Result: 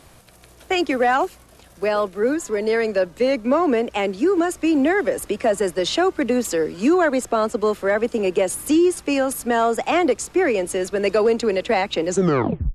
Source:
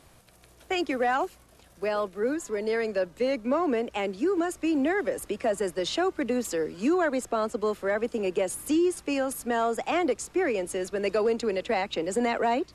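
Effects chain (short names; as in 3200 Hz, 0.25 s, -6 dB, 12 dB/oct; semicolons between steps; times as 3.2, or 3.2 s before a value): tape stop at the end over 0.68 s; gain +7.5 dB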